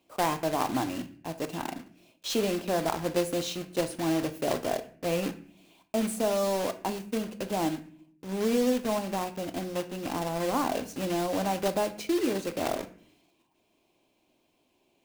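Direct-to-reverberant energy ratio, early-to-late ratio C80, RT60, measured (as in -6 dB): 9.0 dB, 18.0 dB, 0.50 s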